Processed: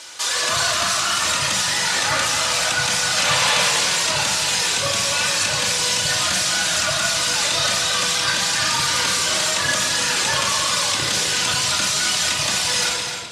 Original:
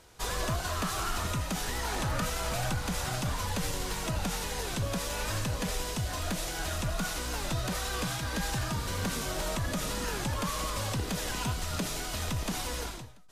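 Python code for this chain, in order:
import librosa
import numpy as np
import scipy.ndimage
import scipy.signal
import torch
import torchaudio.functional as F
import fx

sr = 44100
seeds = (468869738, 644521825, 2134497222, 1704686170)

p1 = fx.weighting(x, sr, curve='ITU-R 468')
p2 = fx.dereverb_blind(p1, sr, rt60_s=0.9)
p3 = scipy.signal.sosfilt(scipy.signal.butter(2, 62.0, 'highpass', fs=sr, output='sos'), p2)
p4 = fx.high_shelf(p3, sr, hz=7000.0, db=-5.0)
p5 = fx.over_compress(p4, sr, threshold_db=-36.0, ratio=-0.5)
p6 = p4 + (p5 * 10.0 ** (2.5 / 20.0))
p7 = fx.spec_paint(p6, sr, seeds[0], shape='noise', start_s=3.16, length_s=0.53, low_hz=440.0, high_hz=4300.0, level_db=-29.0)
p8 = p7 + fx.echo_single(p7, sr, ms=257, db=-7.0, dry=0)
p9 = fx.room_shoebox(p8, sr, seeds[1], volume_m3=2200.0, walls='mixed', distance_m=2.5)
y = p9 * 10.0 ** (3.5 / 20.0)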